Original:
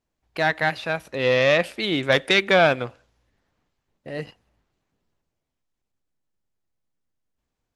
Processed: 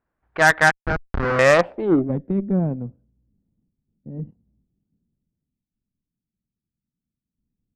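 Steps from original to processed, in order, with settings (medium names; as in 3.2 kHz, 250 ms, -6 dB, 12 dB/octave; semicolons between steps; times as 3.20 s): 0.71–1.39 s: Schmitt trigger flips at -20.5 dBFS; low-pass sweep 1.5 kHz -> 210 Hz, 1.50–2.16 s; Chebyshev shaper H 6 -16 dB, 7 -33 dB, 8 -17 dB, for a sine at -5.5 dBFS; trim +3 dB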